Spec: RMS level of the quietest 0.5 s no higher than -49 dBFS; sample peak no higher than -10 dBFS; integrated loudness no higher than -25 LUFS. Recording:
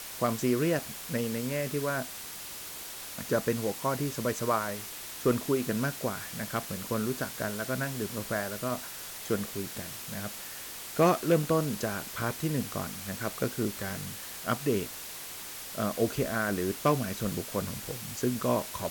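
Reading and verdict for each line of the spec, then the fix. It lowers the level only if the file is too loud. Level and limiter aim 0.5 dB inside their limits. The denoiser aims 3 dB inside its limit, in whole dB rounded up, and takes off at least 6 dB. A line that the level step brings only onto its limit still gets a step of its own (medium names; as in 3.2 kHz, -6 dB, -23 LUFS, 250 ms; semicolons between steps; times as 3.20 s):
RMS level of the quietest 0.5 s -42 dBFS: fail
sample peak -14.0 dBFS: pass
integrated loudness -31.5 LUFS: pass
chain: noise reduction 10 dB, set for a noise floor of -42 dBFS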